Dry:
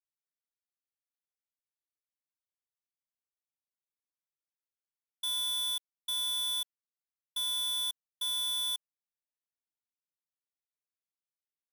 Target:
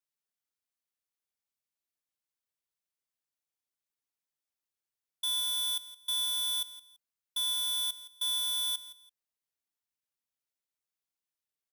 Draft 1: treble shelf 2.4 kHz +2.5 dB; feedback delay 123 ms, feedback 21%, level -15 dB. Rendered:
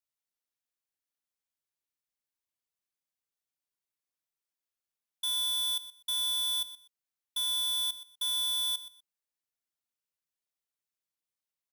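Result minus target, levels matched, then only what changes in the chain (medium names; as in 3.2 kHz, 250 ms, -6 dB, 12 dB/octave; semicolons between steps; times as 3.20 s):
echo 44 ms early
change: feedback delay 167 ms, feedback 21%, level -15 dB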